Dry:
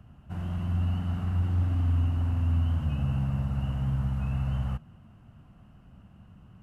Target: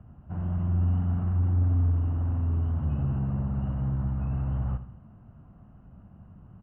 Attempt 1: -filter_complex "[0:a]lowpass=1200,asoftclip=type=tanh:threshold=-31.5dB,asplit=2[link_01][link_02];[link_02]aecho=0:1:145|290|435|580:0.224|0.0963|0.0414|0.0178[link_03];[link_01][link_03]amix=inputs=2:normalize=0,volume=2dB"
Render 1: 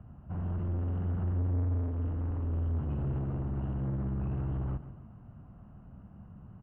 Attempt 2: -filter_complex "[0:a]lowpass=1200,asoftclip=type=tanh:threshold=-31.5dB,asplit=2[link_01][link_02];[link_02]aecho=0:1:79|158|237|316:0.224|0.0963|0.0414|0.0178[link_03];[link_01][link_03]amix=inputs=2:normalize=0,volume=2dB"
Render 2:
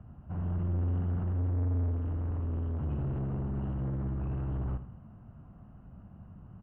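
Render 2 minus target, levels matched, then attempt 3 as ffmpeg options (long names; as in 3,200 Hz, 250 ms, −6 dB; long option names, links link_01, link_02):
soft clipping: distortion +11 dB
-filter_complex "[0:a]lowpass=1200,asoftclip=type=tanh:threshold=-21dB,asplit=2[link_01][link_02];[link_02]aecho=0:1:79|158|237|316:0.224|0.0963|0.0414|0.0178[link_03];[link_01][link_03]amix=inputs=2:normalize=0,volume=2dB"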